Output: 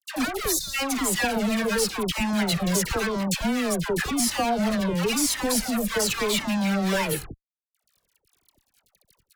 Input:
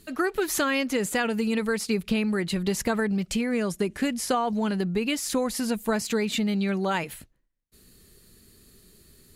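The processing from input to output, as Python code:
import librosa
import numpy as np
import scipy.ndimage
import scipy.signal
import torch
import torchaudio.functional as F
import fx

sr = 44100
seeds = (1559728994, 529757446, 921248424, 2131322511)

y = fx.fuzz(x, sr, gain_db=39.0, gate_db=-46.0)
y = fx.spec_box(y, sr, start_s=0.51, length_s=0.21, low_hz=220.0, high_hz=3500.0, gain_db=-26)
y = fx.dispersion(y, sr, late='lows', ms=100.0, hz=980.0)
y = fx.comb_cascade(y, sr, direction='falling', hz=0.94)
y = y * 10.0 ** (-5.0 / 20.0)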